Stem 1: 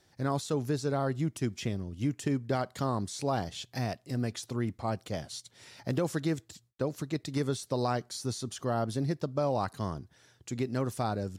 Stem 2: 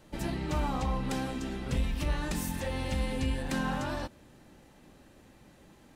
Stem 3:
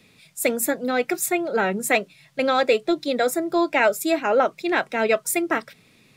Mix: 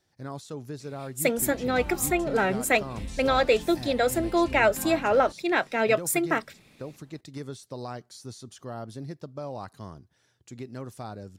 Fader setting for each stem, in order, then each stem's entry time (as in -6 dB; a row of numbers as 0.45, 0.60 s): -7.0, -7.5, -2.5 dB; 0.00, 1.25, 0.80 s